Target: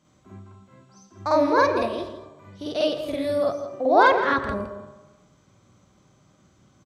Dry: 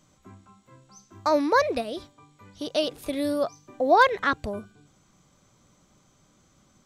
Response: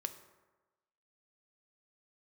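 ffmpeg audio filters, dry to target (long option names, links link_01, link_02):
-filter_complex "[0:a]highpass=62,highshelf=frequency=6800:gain=-11,asplit=2[link_01][link_02];[link_02]adelay=163.3,volume=-11dB,highshelf=frequency=4000:gain=-3.67[link_03];[link_01][link_03]amix=inputs=2:normalize=0,asplit=2[link_04][link_05];[1:a]atrim=start_sample=2205,lowshelf=frequency=190:gain=5,adelay=50[link_06];[link_05][link_06]afir=irnorm=-1:irlink=0,volume=4.5dB[link_07];[link_04][link_07]amix=inputs=2:normalize=0,volume=-3dB"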